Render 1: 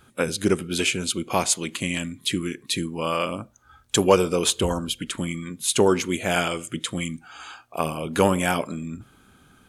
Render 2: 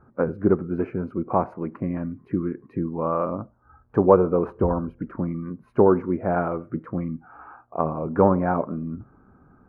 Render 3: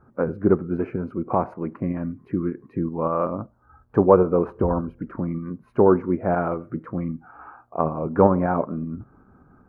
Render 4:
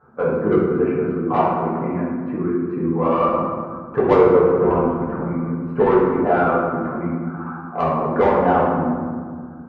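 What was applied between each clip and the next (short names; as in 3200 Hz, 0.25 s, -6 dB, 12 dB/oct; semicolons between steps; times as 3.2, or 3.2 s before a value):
inverse Chebyshev low-pass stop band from 3200 Hz, stop band 50 dB; gain +2 dB
tremolo saw up 5.2 Hz, depth 35%; gain +2.5 dB
overdrive pedal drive 20 dB, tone 1600 Hz, clips at -1 dBFS; reverb RT60 1.9 s, pre-delay 3 ms, DRR -7 dB; gain -9.5 dB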